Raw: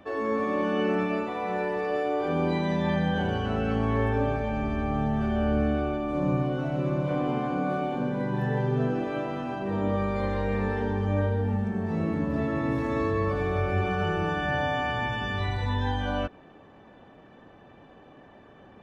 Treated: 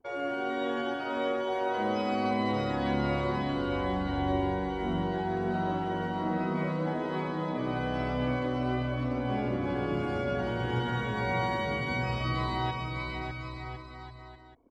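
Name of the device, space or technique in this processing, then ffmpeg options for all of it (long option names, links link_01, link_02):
nightcore: -af "anlmdn=0.158,aecho=1:1:770|1348|1781|2105|2349:0.631|0.398|0.251|0.158|0.1,asetrate=56448,aresample=44100,volume=-5.5dB"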